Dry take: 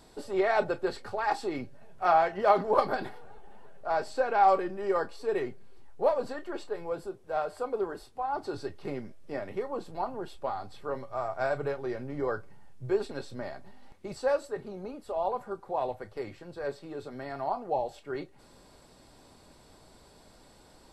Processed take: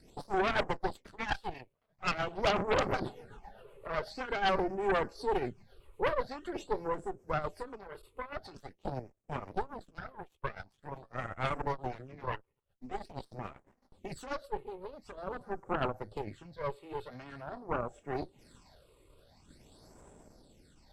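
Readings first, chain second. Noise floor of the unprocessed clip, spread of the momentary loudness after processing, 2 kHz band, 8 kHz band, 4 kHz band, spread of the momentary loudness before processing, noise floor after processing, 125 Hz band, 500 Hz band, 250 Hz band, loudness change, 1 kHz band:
−57 dBFS, 16 LU, −0.5 dB, can't be measured, +4.0 dB, 16 LU, −75 dBFS, +2.0 dB, −6.5 dB, −3.0 dB, −5.0 dB, −6.5 dB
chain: in parallel at 0 dB: downward compressor, threshold −41 dBFS, peak gain reduction 22 dB
on the sum: rotating-speaker cabinet horn 8 Hz, later 0.7 Hz, at 0:15.78
all-pass phaser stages 8, 0.46 Hz, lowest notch 210–4,300 Hz
harmonic generator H 8 −9 dB, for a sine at −13.5 dBFS
level −5.5 dB

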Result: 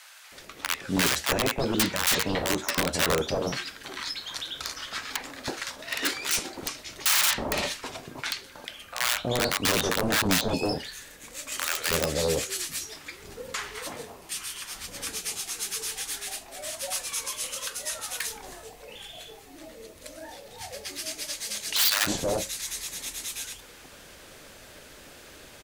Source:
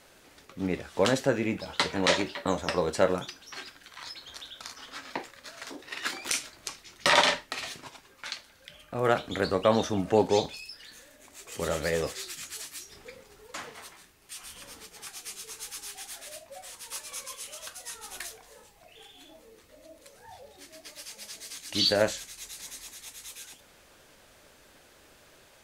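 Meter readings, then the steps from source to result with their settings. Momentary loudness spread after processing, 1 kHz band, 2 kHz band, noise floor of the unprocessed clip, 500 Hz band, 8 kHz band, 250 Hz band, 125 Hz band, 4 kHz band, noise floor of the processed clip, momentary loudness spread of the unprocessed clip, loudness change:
21 LU, −0.5 dB, +3.5 dB, −58 dBFS, −2.5 dB, +8.5 dB, +1.5 dB, +2.5 dB, +4.0 dB, −49 dBFS, 20 LU, +2.0 dB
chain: in parallel at +0.5 dB: downward compressor 20 to 1, threshold −38 dBFS, peak gain reduction 23 dB
on the sum: wrap-around overflow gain 18.5 dB
multiband delay without the direct sound highs, lows 320 ms, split 900 Hz
level +3 dB

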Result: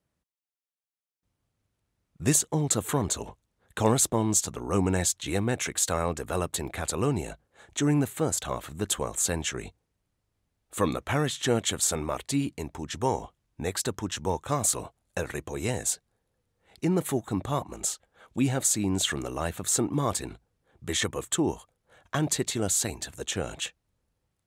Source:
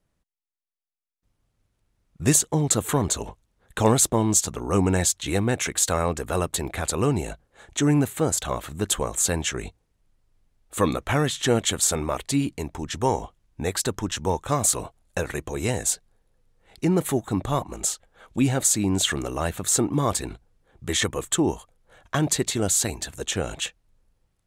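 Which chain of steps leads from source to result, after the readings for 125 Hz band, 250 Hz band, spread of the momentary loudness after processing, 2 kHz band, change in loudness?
−4.5 dB, −4.0 dB, 11 LU, −4.0 dB, −4.0 dB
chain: high-pass filter 61 Hz
level −4 dB

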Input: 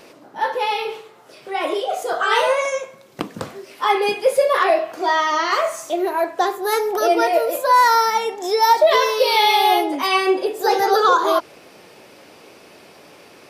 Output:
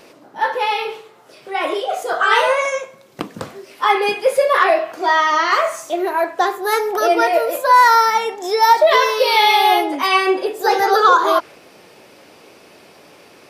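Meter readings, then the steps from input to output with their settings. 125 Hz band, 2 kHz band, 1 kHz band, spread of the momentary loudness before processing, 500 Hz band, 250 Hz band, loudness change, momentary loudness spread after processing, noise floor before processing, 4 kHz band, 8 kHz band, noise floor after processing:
can't be measured, +4.5 dB, +3.0 dB, 11 LU, +1.0 dB, +0.5 dB, +2.5 dB, 11 LU, −47 dBFS, +1.5 dB, +0.5 dB, −47 dBFS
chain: dynamic equaliser 1,600 Hz, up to +5 dB, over −31 dBFS, Q 0.81

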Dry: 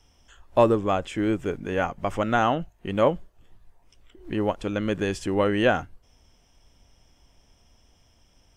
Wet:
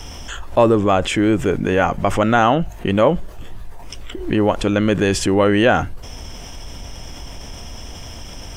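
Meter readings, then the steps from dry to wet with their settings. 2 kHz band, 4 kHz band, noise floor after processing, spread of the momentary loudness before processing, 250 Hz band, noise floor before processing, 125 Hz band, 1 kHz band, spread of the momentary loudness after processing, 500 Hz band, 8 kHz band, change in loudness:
+8.0 dB, +10.5 dB, −35 dBFS, 8 LU, +9.0 dB, −62 dBFS, +9.5 dB, +7.5 dB, 20 LU, +7.0 dB, +15.5 dB, +8.0 dB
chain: envelope flattener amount 50%
level +4 dB

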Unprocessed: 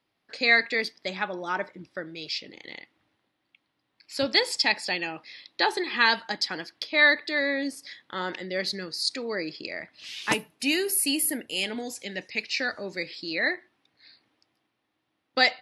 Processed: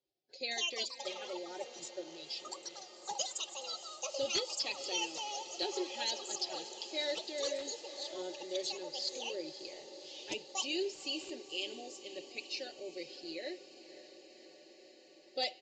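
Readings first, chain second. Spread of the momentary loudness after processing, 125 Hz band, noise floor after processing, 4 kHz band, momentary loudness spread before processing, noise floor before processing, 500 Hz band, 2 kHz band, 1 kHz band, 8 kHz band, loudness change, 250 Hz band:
13 LU, below −20 dB, −60 dBFS, −8.0 dB, 16 LU, −78 dBFS, −8.0 dB, −20.5 dB, −12.5 dB, −7.0 dB, −12.5 dB, −13.0 dB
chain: spectral magnitudes quantised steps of 15 dB
phaser with its sweep stopped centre 470 Hz, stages 4
comb filter 5.4 ms, depth 60%
delay with pitch and tempo change per echo 290 ms, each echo +7 semitones, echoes 2
parametric band 1,800 Hz −15 dB 1.3 octaves
feedback delay with all-pass diffusion 544 ms, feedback 75%, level −13.5 dB
wave folding −18 dBFS
dynamic equaliser 2,900 Hz, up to +7 dB, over −49 dBFS, Q 2.4
level −8.5 dB
Ogg Vorbis 96 kbit/s 16,000 Hz

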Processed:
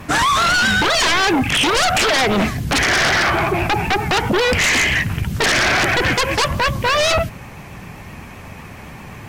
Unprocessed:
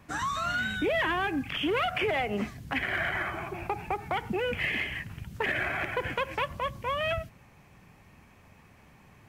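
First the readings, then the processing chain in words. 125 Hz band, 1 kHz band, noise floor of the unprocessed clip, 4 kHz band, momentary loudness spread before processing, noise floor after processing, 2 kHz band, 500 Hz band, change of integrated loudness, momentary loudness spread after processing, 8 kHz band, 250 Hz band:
+16.5 dB, +14.0 dB, −57 dBFS, +19.0 dB, 7 LU, −36 dBFS, +14.0 dB, +12.0 dB, +14.5 dB, 7 LU, +27.5 dB, +13.5 dB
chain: pitch vibrato 7.8 Hz 50 cents
sine wavefolder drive 12 dB, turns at −17.5 dBFS
level +5 dB

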